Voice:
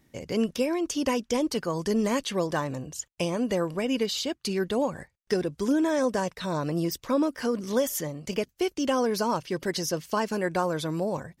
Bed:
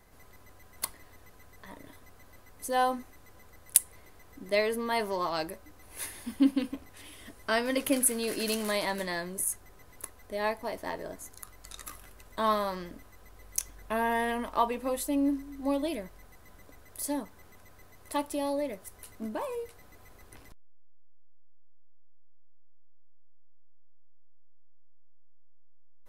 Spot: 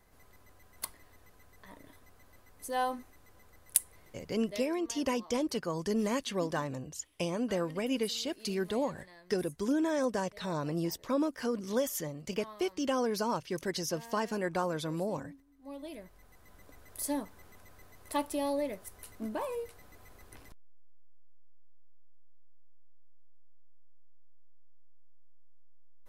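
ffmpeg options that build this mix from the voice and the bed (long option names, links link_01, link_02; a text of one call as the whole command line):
ffmpeg -i stem1.wav -i stem2.wav -filter_complex "[0:a]adelay=4000,volume=-5.5dB[link_01];[1:a]volume=16dB,afade=type=out:start_time=4.2:duration=0.43:silence=0.141254,afade=type=in:start_time=15.59:duration=1.28:silence=0.0891251[link_02];[link_01][link_02]amix=inputs=2:normalize=0" out.wav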